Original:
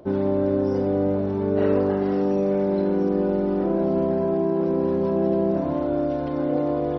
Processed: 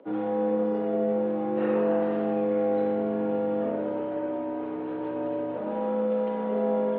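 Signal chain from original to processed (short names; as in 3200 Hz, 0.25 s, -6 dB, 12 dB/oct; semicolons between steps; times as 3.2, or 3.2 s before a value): mistuned SSB -80 Hz 390–3500 Hz; spring tank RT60 1.2 s, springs 42/57 ms, chirp 45 ms, DRR 0 dB; gain -3 dB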